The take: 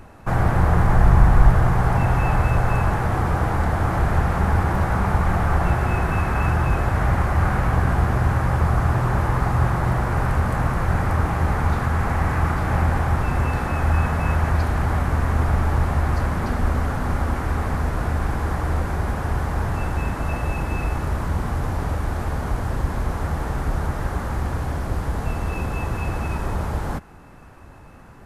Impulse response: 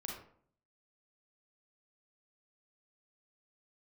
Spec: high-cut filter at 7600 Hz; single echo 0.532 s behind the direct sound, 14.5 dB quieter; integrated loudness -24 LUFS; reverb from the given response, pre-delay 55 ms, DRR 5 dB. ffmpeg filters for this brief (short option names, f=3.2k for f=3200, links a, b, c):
-filter_complex "[0:a]lowpass=7.6k,aecho=1:1:532:0.188,asplit=2[a][b];[1:a]atrim=start_sample=2205,adelay=55[c];[b][c]afir=irnorm=-1:irlink=0,volume=-4dB[d];[a][d]amix=inputs=2:normalize=0,volume=-3dB"